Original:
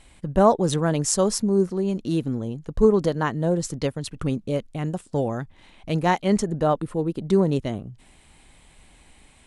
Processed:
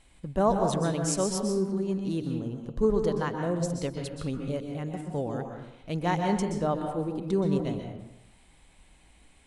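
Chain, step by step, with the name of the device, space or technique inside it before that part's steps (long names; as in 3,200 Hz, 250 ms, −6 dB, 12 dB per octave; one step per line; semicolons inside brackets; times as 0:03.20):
bathroom (convolution reverb RT60 0.90 s, pre-delay 119 ms, DRR 3.5 dB)
level −7.5 dB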